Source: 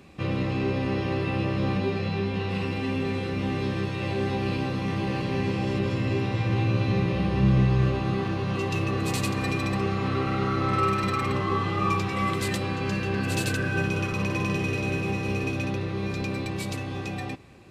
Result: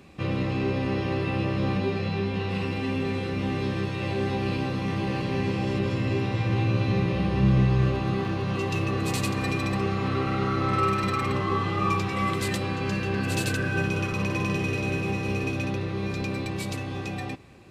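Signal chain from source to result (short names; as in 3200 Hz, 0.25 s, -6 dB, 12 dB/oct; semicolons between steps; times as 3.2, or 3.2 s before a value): 7.74–10.23 crackle 16/s -43 dBFS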